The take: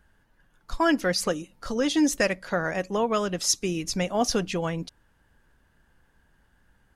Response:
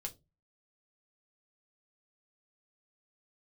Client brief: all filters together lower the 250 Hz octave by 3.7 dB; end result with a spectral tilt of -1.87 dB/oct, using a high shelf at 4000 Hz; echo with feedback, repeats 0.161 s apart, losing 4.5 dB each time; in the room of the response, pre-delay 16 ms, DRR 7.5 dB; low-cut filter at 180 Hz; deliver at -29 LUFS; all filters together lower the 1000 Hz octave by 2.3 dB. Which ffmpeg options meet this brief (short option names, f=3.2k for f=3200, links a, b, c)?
-filter_complex "[0:a]highpass=180,equalizer=f=250:t=o:g=-3.5,equalizer=f=1k:t=o:g=-3.5,highshelf=f=4k:g=8,aecho=1:1:161|322|483|644|805|966|1127|1288|1449:0.596|0.357|0.214|0.129|0.0772|0.0463|0.0278|0.0167|0.01,asplit=2[a][b];[1:a]atrim=start_sample=2205,adelay=16[c];[b][c]afir=irnorm=-1:irlink=0,volume=-5dB[d];[a][d]amix=inputs=2:normalize=0,volume=-6.5dB"